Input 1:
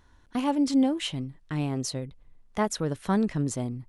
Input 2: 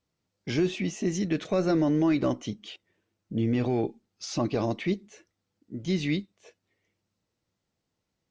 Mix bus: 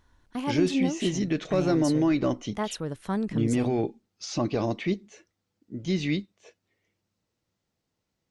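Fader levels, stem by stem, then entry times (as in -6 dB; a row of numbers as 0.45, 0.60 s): -4.0, +0.5 dB; 0.00, 0.00 s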